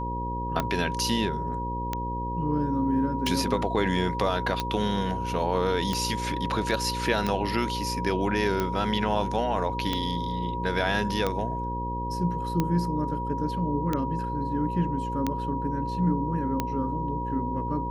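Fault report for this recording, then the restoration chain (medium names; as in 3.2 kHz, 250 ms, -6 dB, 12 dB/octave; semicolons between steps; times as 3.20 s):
buzz 60 Hz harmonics 9 -33 dBFS
tick 45 rpm -12 dBFS
whine 960 Hz -31 dBFS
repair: de-click; de-hum 60 Hz, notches 9; band-stop 960 Hz, Q 30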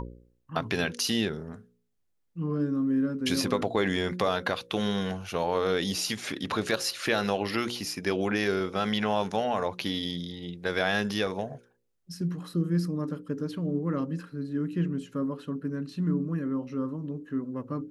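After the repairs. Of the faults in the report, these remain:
nothing left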